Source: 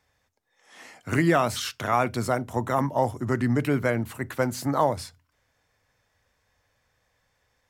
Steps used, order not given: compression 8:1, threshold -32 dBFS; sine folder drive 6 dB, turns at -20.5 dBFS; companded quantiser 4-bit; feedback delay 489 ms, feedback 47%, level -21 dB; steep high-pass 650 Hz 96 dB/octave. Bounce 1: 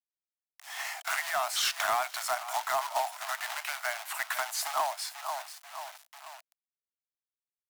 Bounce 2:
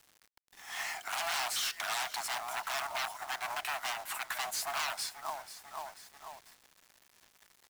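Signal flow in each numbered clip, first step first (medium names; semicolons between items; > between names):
feedback delay > companded quantiser > compression > steep high-pass > sine folder; feedback delay > sine folder > compression > steep high-pass > companded quantiser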